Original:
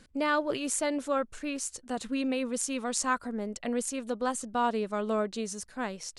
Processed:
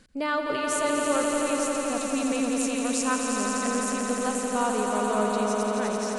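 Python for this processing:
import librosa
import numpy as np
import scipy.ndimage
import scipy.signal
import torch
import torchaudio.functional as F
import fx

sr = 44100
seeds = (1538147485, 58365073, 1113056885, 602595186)

y = fx.echo_swell(x, sr, ms=86, loudest=5, wet_db=-6.0)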